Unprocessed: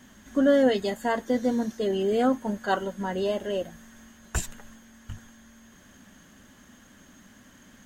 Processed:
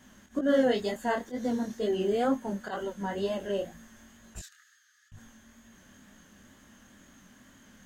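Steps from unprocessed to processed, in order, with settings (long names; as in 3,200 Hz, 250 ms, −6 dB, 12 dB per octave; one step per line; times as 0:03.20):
volume swells 113 ms
0:04.39–0:05.12: Chebyshev high-pass with heavy ripple 1,200 Hz, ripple 9 dB
chorus effect 2.1 Hz, delay 18 ms, depth 7.4 ms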